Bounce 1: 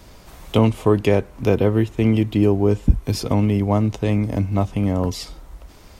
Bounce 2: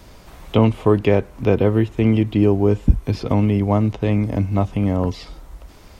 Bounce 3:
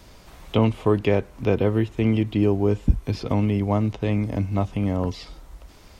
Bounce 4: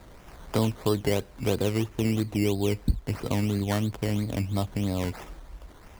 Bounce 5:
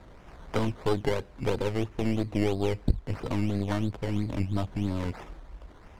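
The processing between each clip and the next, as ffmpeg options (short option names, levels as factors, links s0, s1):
-filter_complex "[0:a]acrossover=split=4000[s0][s1];[s1]acompressor=threshold=0.002:ratio=4:attack=1:release=60[s2];[s0][s2]amix=inputs=2:normalize=0,volume=1.12"
-af "equalizer=f=4800:t=o:w=2.5:g=3,volume=0.596"
-filter_complex "[0:a]asplit=2[s0][s1];[s1]acompressor=threshold=0.0447:ratio=6,volume=1.26[s2];[s0][s2]amix=inputs=2:normalize=0,acrusher=samples=14:mix=1:aa=0.000001:lfo=1:lforange=8.4:lforate=3,volume=0.398"
-af "aeval=exprs='0.266*(cos(1*acos(clip(val(0)/0.266,-1,1)))-cos(1*PI/2))+0.0668*(cos(4*acos(clip(val(0)/0.266,-1,1)))-cos(4*PI/2))':c=same,aemphasis=mode=reproduction:type=50fm,volume=0.841"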